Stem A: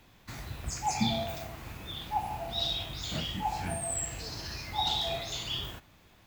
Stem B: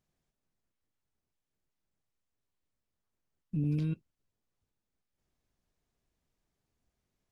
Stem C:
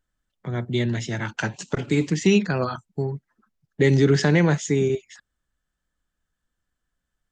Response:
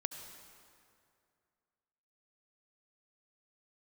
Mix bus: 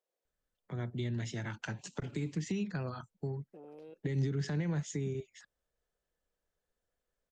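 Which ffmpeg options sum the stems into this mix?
-filter_complex "[1:a]aeval=exprs='(tanh(31.6*val(0)+0.8)-tanh(0.8))/31.6':c=same,highpass=f=500:t=q:w=4.9,alimiter=level_in=15.5dB:limit=-24dB:level=0:latency=1:release=28,volume=-15.5dB,volume=-3.5dB[a];[2:a]alimiter=limit=-11dB:level=0:latency=1:release=95,adelay=250,volume=-9.5dB[b];[a][b]amix=inputs=2:normalize=0,acrossover=split=190[c][d];[d]acompressor=threshold=-38dB:ratio=10[e];[c][e]amix=inputs=2:normalize=0"

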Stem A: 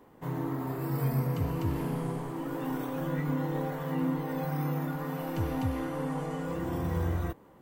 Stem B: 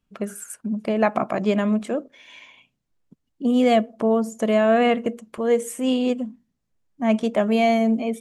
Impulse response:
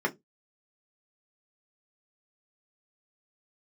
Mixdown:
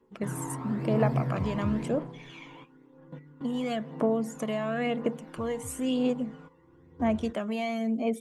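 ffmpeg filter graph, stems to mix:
-filter_complex "[0:a]lowpass=4.3k,volume=-0.5dB,afade=t=out:st=1.65:d=0.46:silence=0.281838,asplit=2[a][b];[b]volume=-23.5dB[c];[1:a]acompressor=threshold=-21dB:ratio=6,volume=-5dB,asplit=2[d][e];[e]apad=whole_len=335673[f];[a][f]sidechaingate=range=-16dB:threshold=-58dB:ratio=16:detection=peak[g];[2:a]atrim=start_sample=2205[h];[c][h]afir=irnorm=-1:irlink=0[i];[g][d][i]amix=inputs=3:normalize=0,lowshelf=f=120:g=-8,aphaser=in_gain=1:out_gain=1:delay=1.1:decay=0.45:speed=0.99:type=triangular"

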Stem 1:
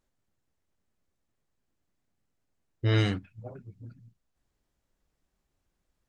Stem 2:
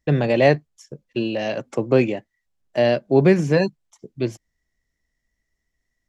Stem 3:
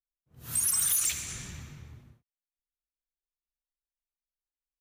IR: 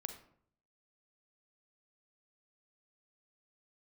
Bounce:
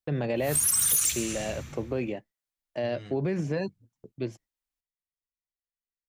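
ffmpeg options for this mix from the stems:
-filter_complex "[0:a]alimiter=limit=-22dB:level=0:latency=1,volume=-13.5dB[a];[1:a]highshelf=f=5.9k:g=-5.5,volume=-8dB[b];[2:a]acrossover=split=320|3000[c][d][e];[d]acompressor=threshold=-43dB:ratio=6[f];[c][f][e]amix=inputs=3:normalize=0,volume=3dB[g];[a][b]amix=inputs=2:normalize=0,agate=range=-24dB:threshold=-50dB:ratio=16:detection=peak,alimiter=limit=-20dB:level=0:latency=1:release=50,volume=0dB[h];[g][h]amix=inputs=2:normalize=0"

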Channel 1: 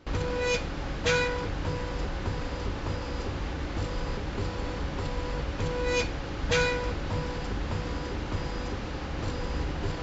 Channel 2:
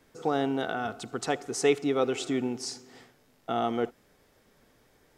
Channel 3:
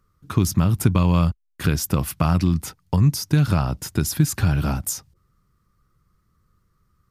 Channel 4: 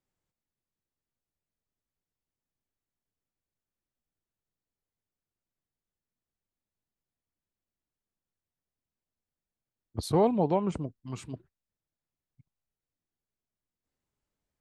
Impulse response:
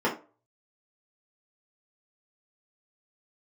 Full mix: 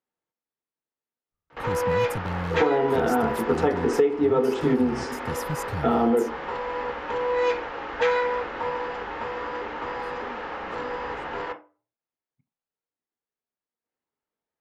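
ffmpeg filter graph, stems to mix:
-filter_complex "[0:a]acrossover=split=570 2900:gain=0.112 1 0.141[a][b][c];[a][b][c]amix=inputs=3:normalize=0,adelay=1500,volume=3dB,asplit=2[d][e];[e]volume=-11dB[f];[1:a]lowpass=f=1.8k:p=1,adelay=2350,volume=1.5dB,asplit=2[g][h];[h]volume=-5.5dB[i];[2:a]agate=range=-33dB:threshold=-55dB:ratio=3:detection=peak,aeval=exprs='0.316*(abs(mod(val(0)/0.316+3,4)-2)-1)':c=same,adelay=1300,volume=-12.5dB[j];[3:a]alimiter=limit=-22.5dB:level=0:latency=1,asplit=2[k][l];[l]highpass=f=720:p=1,volume=29dB,asoftclip=type=tanh:threshold=-22.5dB[m];[k][m]amix=inputs=2:normalize=0,lowpass=f=1.3k:p=1,volume=-6dB,volume=-19.5dB,asplit=2[n][o];[o]volume=-21.5dB[p];[4:a]atrim=start_sample=2205[q];[f][i][p]amix=inputs=3:normalize=0[r];[r][q]afir=irnorm=-1:irlink=0[s];[d][g][j][n][s]amix=inputs=5:normalize=0,acompressor=threshold=-17dB:ratio=12"

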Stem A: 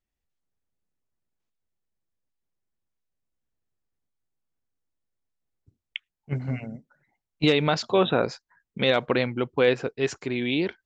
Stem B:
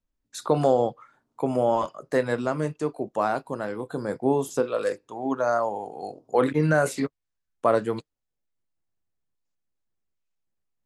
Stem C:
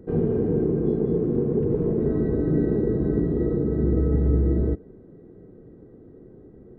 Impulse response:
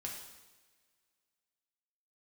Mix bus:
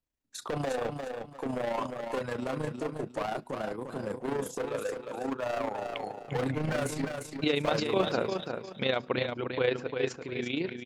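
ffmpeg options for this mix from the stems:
-filter_complex "[0:a]bandreject=f=50:t=h:w=6,bandreject=f=100:t=h:w=6,bandreject=f=150:t=h:w=6,bandreject=f=200:t=h:w=6,bandreject=f=250:t=h:w=6,volume=-5dB,asplit=3[a][b][c];[b]volume=-23.5dB[d];[c]volume=-6dB[e];[1:a]highpass=54,asoftclip=type=hard:threshold=-24.5dB,volume=-2.5dB,asplit=3[f][g][h];[g]volume=-23.5dB[i];[h]volume=-5.5dB[j];[3:a]atrim=start_sample=2205[k];[d][i]amix=inputs=2:normalize=0[l];[l][k]afir=irnorm=-1:irlink=0[m];[e][j]amix=inputs=2:normalize=0,aecho=0:1:347|694|1041|1388:1|0.27|0.0729|0.0197[n];[a][f][m][n]amix=inputs=4:normalize=0,tremolo=f=28:d=0.571"

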